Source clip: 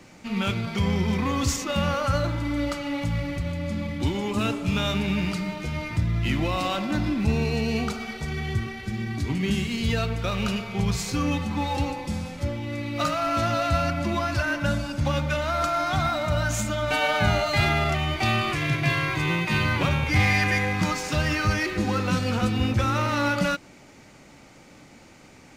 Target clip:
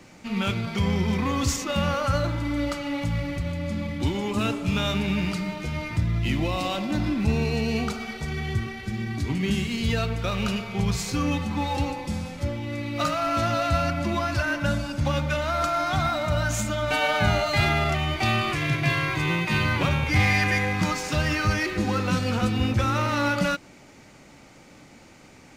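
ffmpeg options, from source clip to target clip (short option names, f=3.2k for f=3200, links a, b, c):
-filter_complex "[0:a]asettb=1/sr,asplit=3[a][b][c];[a]atrim=end=6.184[d];[b]atrim=start=6.18:end=7,asetpts=PTS-STARTPTS,afade=t=in:d=0.004:c=qsin,afade=t=out:st=0.816:d=0.004:c=qsin,equalizer=f=1.4k:t=o:w=0.77:g=-5.5[e];[c]atrim=start=6.996[f];[d][e]acrossfade=d=0.004:c1=hsin:c2=qsin[g];[g][f]acrossfade=d=0.004:c1=qsin:c2=hsin"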